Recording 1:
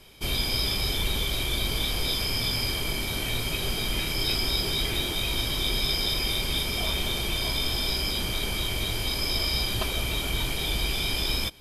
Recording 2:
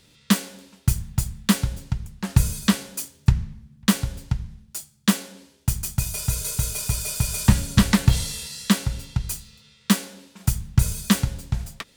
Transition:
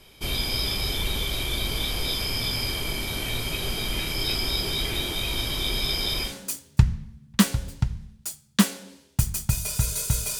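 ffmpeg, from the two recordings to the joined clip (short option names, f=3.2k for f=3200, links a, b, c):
-filter_complex "[0:a]apad=whole_dur=10.39,atrim=end=10.39,atrim=end=6.34,asetpts=PTS-STARTPTS[a];[1:a]atrim=start=2.71:end=6.88,asetpts=PTS-STARTPTS[b];[a][b]acrossfade=d=0.12:c1=tri:c2=tri"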